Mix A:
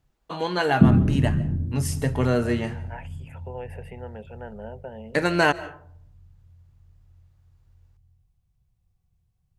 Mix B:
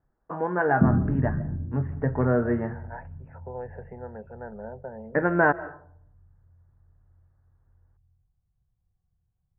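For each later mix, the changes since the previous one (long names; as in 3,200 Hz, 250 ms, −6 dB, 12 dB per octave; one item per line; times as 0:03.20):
background −4.5 dB
master: add elliptic low-pass filter 1,700 Hz, stop band 60 dB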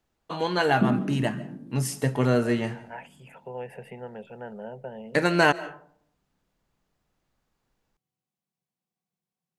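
background: add Butterworth high-pass 190 Hz 36 dB per octave
master: remove elliptic low-pass filter 1,700 Hz, stop band 60 dB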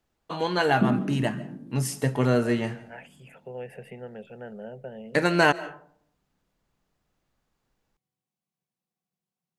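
second voice: add parametric band 960 Hz −12.5 dB 0.43 octaves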